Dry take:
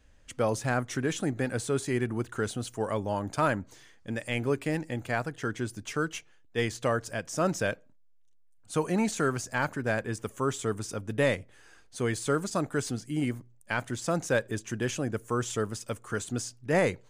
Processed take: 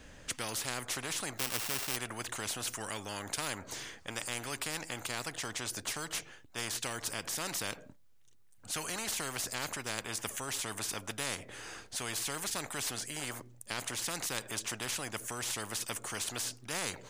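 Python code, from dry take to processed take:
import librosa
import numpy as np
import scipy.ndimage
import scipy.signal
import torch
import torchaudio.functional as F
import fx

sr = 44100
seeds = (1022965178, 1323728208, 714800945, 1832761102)

y = fx.sample_sort(x, sr, block=16, at=(1.37, 1.95), fade=0.02)
y = fx.spectral_comp(y, sr, ratio=4.0)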